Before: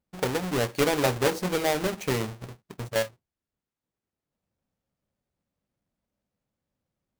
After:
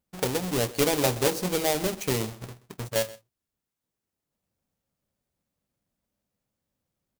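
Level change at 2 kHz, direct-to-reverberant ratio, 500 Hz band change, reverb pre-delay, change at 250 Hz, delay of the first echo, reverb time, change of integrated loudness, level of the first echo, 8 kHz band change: -2.5 dB, none, -0.5 dB, none, 0.0 dB, 0.129 s, none, +0.5 dB, -19.5 dB, +5.0 dB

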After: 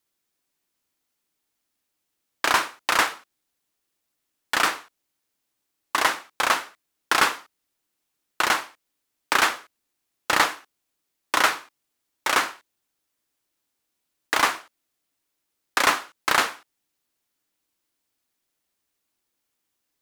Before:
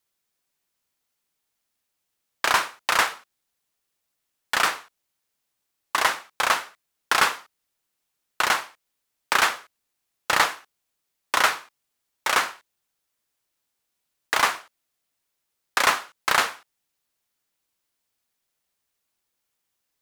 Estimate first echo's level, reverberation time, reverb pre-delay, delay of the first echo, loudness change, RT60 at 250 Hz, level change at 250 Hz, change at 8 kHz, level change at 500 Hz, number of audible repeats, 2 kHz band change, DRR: none, none, none, none, 0.0 dB, none, +5.0 dB, 0.0 dB, +1.0 dB, none, 0.0 dB, none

